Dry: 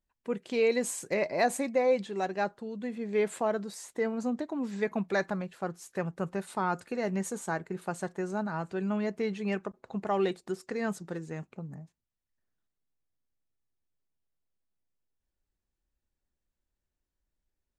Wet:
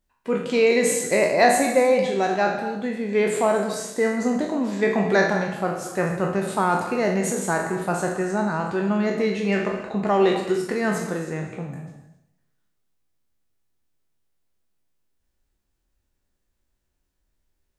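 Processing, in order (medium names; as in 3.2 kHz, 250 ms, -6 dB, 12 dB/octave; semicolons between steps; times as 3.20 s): spectral sustain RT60 0.61 s; gated-style reverb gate 300 ms flat, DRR 8.5 dB; modulated delay 125 ms, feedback 45%, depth 176 cents, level -21.5 dB; trim +7.5 dB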